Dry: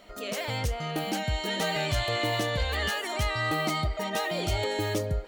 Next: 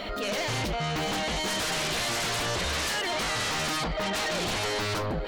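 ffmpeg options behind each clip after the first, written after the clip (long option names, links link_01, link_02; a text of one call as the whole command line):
ffmpeg -i in.wav -af "highshelf=frequency=5400:width_type=q:width=1.5:gain=-9,aeval=exprs='0.133*sin(PI/2*3.98*val(0)/0.133)':channel_layout=same,alimiter=level_in=5dB:limit=-24dB:level=0:latency=1,volume=-5dB,volume=3dB" out.wav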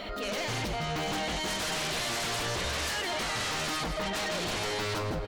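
ffmpeg -i in.wav -af "aecho=1:1:163|326|489:0.355|0.0923|0.024,volume=-3.5dB" out.wav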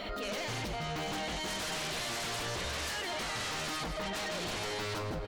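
ffmpeg -i in.wav -af "alimiter=level_in=7dB:limit=-24dB:level=0:latency=1,volume=-7dB" out.wav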